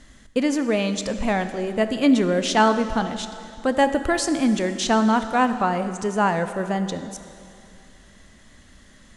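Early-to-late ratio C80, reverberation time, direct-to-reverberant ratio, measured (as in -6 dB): 11.0 dB, 2.6 s, 9.0 dB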